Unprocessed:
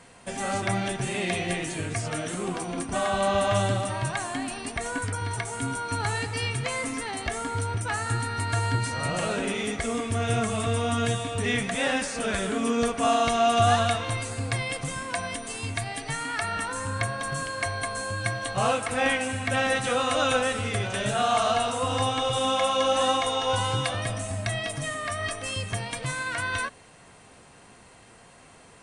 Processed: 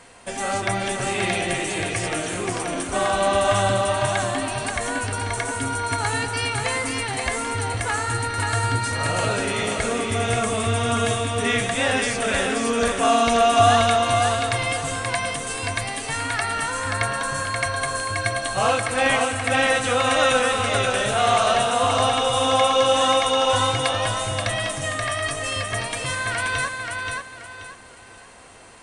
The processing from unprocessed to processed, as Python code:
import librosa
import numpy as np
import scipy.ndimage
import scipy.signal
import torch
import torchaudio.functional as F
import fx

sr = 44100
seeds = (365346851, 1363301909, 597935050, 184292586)

y = fx.peak_eq(x, sr, hz=160.0, db=-7.5, octaves=1.2)
y = fx.echo_feedback(y, sr, ms=530, feedback_pct=31, wet_db=-4)
y = y * librosa.db_to_amplitude(4.5)